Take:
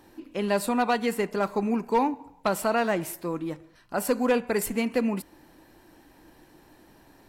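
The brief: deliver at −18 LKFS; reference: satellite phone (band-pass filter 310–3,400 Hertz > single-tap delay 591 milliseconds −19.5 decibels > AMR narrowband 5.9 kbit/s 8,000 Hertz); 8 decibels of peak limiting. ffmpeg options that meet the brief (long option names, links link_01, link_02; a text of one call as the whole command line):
ffmpeg -i in.wav -af "alimiter=limit=-23dB:level=0:latency=1,highpass=310,lowpass=3400,aecho=1:1:591:0.106,volume=18dB" -ar 8000 -c:a libopencore_amrnb -b:a 5900 out.amr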